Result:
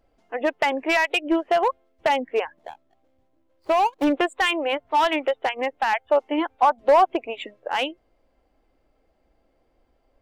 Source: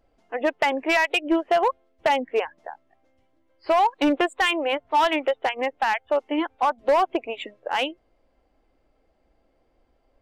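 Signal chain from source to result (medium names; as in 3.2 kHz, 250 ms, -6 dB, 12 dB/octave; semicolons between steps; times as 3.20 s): 2.57–4.07 s: median filter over 25 samples; 5.92–7.06 s: dynamic bell 770 Hz, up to +5 dB, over -30 dBFS, Q 1.2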